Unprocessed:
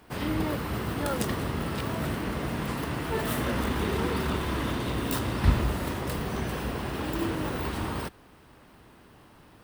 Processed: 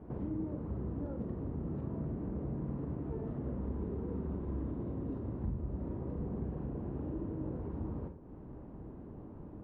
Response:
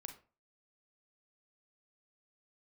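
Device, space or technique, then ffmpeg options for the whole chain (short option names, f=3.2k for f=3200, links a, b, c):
television next door: -filter_complex "[0:a]acompressor=threshold=-46dB:ratio=4,lowpass=440[a];[1:a]atrim=start_sample=2205[b];[a][b]afir=irnorm=-1:irlink=0,volume=13.5dB"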